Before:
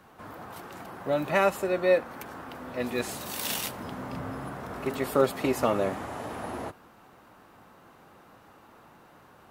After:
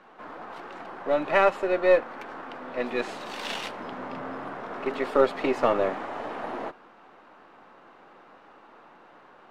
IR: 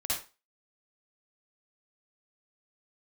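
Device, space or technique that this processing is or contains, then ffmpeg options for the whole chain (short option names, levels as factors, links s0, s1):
crystal radio: -af "highpass=290,lowpass=3300,aeval=exprs='if(lt(val(0),0),0.708*val(0),val(0))':c=same,volume=1.68"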